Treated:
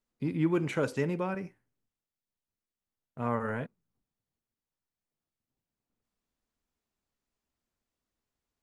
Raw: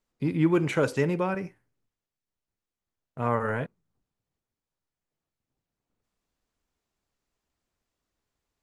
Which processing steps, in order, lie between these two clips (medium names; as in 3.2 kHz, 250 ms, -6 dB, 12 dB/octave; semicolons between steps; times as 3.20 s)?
peaking EQ 230 Hz +4.5 dB 0.4 oct; trim -5.5 dB